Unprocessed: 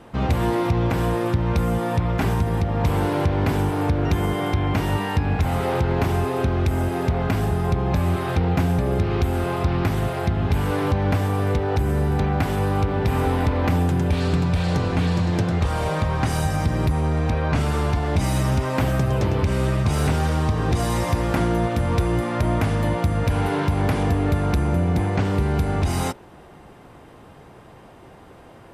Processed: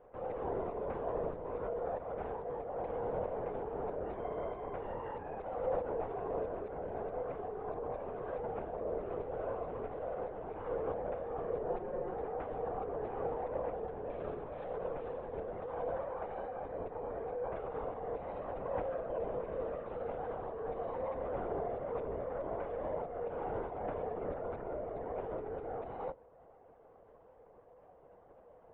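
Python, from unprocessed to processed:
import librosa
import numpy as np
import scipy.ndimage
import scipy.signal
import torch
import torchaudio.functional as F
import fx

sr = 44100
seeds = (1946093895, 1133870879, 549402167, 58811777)

y = fx.ladder_bandpass(x, sr, hz=580.0, resonance_pct=55)
y = fx.lpc_vocoder(y, sr, seeds[0], excitation='whisper', order=16)
y = fx.comb(y, sr, ms=5.6, depth=0.89, at=(11.7, 12.14))
y = y * librosa.db_to_amplitude(-3.0)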